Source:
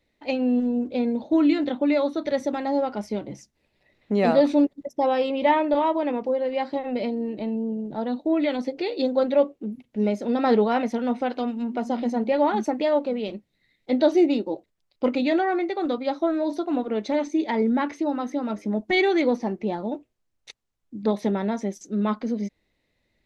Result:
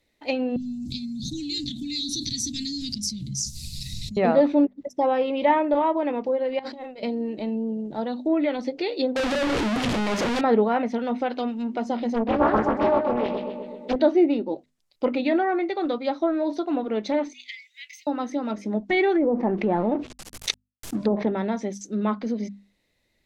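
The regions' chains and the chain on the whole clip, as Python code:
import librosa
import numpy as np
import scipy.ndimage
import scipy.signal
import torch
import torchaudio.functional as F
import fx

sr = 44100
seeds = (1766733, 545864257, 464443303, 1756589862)

y = fx.chain(x, sr, fx.cheby2_bandstop(low_hz=550.0, high_hz=1200.0, order=4, stop_db=80),
    fx.peak_eq(hz=3100.0, db=-7.5, octaves=0.51),
    fx.env_flatten(amount_pct=100), at=(0.56, 4.17))
y = fx.chain(y, sr, fx.hum_notches(base_hz=60, count=9),
    fx.over_compress(threshold_db=-38.0, ratio=-1.0), at=(6.59, 7.03))
y = fx.chain(y, sr, fx.clip_1bit(),
    fx.doubler(ms=32.0, db=-12), at=(9.16, 10.41))
y = fx.chain(y, sr, fx.comb(ms=4.6, depth=0.32),
    fx.echo_filtered(ms=127, feedback_pct=70, hz=2600.0, wet_db=-5.5),
    fx.doppler_dist(depth_ms=0.87), at=(12.14, 13.96))
y = fx.chain(y, sr, fx.cheby_ripple_highpass(hz=2000.0, ripple_db=3),
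    fx.resample_linear(factor=2), at=(17.33, 18.07))
y = fx.chain(y, sr, fx.law_mismatch(coded='A'),
    fx.env_lowpass_down(base_hz=650.0, full_db=-18.5),
    fx.env_flatten(amount_pct=70), at=(19.15, 21.27))
y = fx.hum_notches(y, sr, base_hz=50, count=5)
y = fx.env_lowpass_down(y, sr, base_hz=2100.0, full_db=-19.0)
y = fx.high_shelf(y, sr, hz=4600.0, db=9.0)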